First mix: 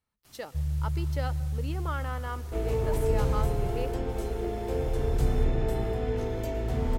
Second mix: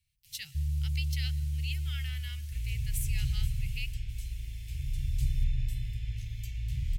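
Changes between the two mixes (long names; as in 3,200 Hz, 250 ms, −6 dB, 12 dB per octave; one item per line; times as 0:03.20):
speech +9.5 dB
second sound: send −11.0 dB
master: add elliptic band-stop filter 130–2,400 Hz, stop band 40 dB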